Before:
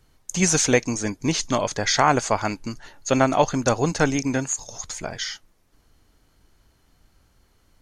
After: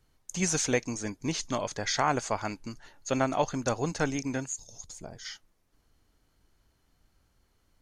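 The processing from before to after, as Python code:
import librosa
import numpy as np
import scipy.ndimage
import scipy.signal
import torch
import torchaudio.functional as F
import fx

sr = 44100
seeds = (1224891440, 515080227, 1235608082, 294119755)

y = fx.peak_eq(x, sr, hz=fx.line((4.45, 850.0), (5.24, 2800.0)), db=-14.5, octaves=2.2, at=(4.45, 5.24), fade=0.02)
y = y * librosa.db_to_amplitude(-8.5)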